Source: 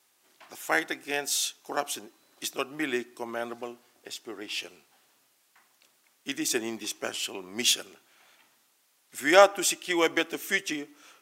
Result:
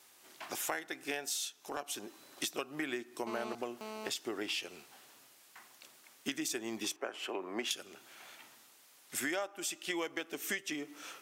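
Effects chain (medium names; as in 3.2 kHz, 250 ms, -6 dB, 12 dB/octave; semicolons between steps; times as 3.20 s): 6.96–7.71 s: three-band isolator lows -18 dB, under 290 Hz, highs -19 dB, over 2.1 kHz; compression 12:1, threshold -40 dBFS, peak gain reduction 28.5 dB; 1.37–1.88 s: transient shaper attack -7 dB, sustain -3 dB; 3.27–4.09 s: mobile phone buzz -50 dBFS; trim +6 dB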